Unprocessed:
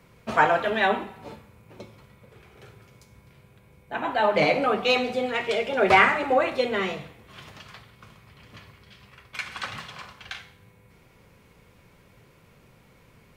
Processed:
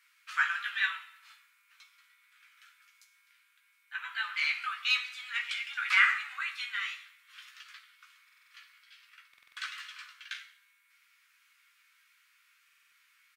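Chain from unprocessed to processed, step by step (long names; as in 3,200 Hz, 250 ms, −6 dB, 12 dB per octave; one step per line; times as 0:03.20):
Butterworth high-pass 1,300 Hz 48 dB per octave
double-tracking delay 15 ms −5.5 dB
buffer that repeats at 0:08.24/0:09.29/0:12.64, samples 2,048, times 5
level −4.5 dB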